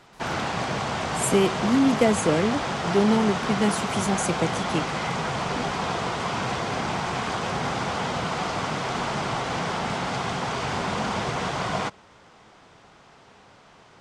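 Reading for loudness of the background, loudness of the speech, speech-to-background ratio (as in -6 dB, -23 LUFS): -27.5 LUFS, -24.5 LUFS, 3.0 dB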